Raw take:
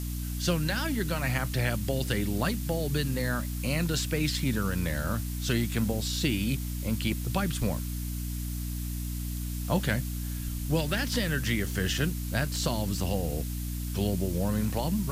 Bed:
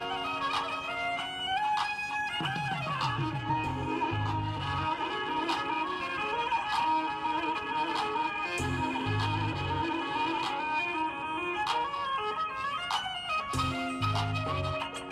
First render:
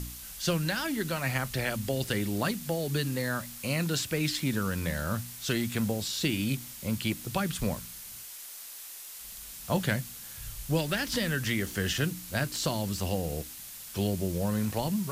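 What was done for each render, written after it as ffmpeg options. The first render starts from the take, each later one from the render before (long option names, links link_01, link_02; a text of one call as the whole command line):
ffmpeg -i in.wav -af "bandreject=frequency=60:width_type=h:width=4,bandreject=frequency=120:width_type=h:width=4,bandreject=frequency=180:width_type=h:width=4,bandreject=frequency=240:width_type=h:width=4,bandreject=frequency=300:width_type=h:width=4" out.wav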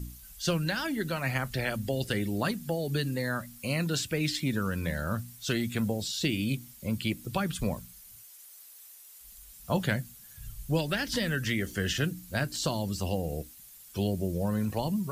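ffmpeg -i in.wav -af "afftdn=noise_reduction=12:noise_floor=-44" out.wav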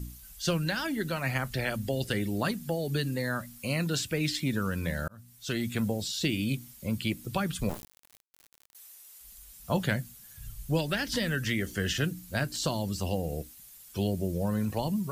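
ffmpeg -i in.wav -filter_complex "[0:a]asettb=1/sr,asplit=3[link_01][link_02][link_03];[link_01]atrim=end=7.694[link_04];[link_02]atrim=start=7.69:end=8.75,asetpts=PTS-STARTPTS,afade=type=in:duration=0.004:curve=qsin,afade=type=out:start_time=1.056:duration=0.004:curve=qsin,acrusher=bits=4:dc=4:mix=0:aa=0.000001[link_05];[link_03]atrim=start=8.746[link_06];[link_04][link_05]acrossfade=duration=0.004:curve1=hsin:curve2=qsin[link_07];[link_07][link_06]acrossfade=duration=0.004:curve1=qsin:curve2=hsin,asplit=2[link_08][link_09];[link_08]atrim=end=5.08,asetpts=PTS-STARTPTS,afade=type=out:start_time=5.076:duration=0.004:curve=hsin[link_10];[link_09]atrim=start=5.08,asetpts=PTS-STARTPTS,afade=type=in:duration=0.6[link_11];[link_10][link_11]concat=n=2:v=0:a=1" out.wav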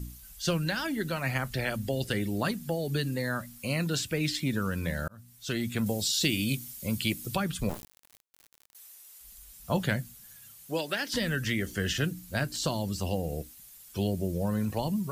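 ffmpeg -i in.wav -filter_complex "[0:a]asettb=1/sr,asplit=3[link_01][link_02][link_03];[link_01]atrim=end=5.864[link_04];[link_02]atrim=start=5.86:end=7.36,asetpts=PTS-STARTPTS,afade=type=in:duration=0.004:curve=qsin,afade=type=out:start_time=1.496:duration=0.004:curve=qsin,highshelf=frequency=3100:gain=8.5[link_05];[link_03]atrim=start=7.356[link_06];[link_04][link_05]acrossfade=duration=0.004:curve1=hsin:curve2=qsin[link_07];[link_07][link_06]acrossfade=duration=0.004:curve1=qsin:curve2=hsin,asettb=1/sr,asplit=3[link_08][link_09][link_10];[link_08]atrim=end=10.364[link_11];[link_09]atrim=start=10.36:end=11.14,asetpts=PTS-STARTPTS,afade=type=in:duration=0.004:curve=qsin,afade=type=out:start_time=0.776:duration=0.004:curve=qsin,highpass=310[link_12];[link_10]atrim=start=11.136[link_13];[link_11][link_12]acrossfade=duration=0.004:curve1=hsin:curve2=qsin[link_14];[link_14][link_13]acrossfade=duration=0.004:curve1=qsin:curve2=hsin" out.wav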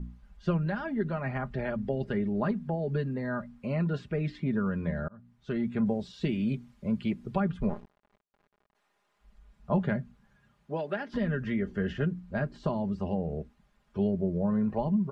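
ffmpeg -i in.wav -af "lowpass=1200,aecho=1:1:4.9:0.56" out.wav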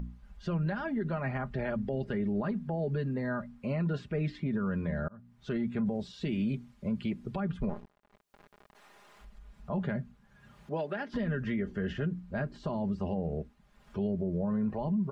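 ffmpeg -i in.wav -af "acompressor=mode=upward:threshold=-43dB:ratio=2.5,alimiter=limit=-24dB:level=0:latency=1:release=50" out.wav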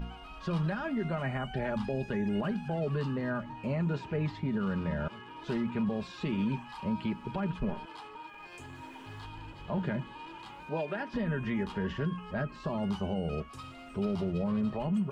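ffmpeg -i in.wav -i bed.wav -filter_complex "[1:a]volume=-15.5dB[link_01];[0:a][link_01]amix=inputs=2:normalize=0" out.wav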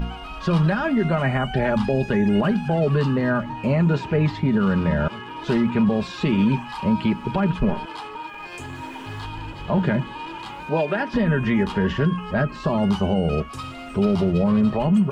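ffmpeg -i in.wav -af "volume=12dB" out.wav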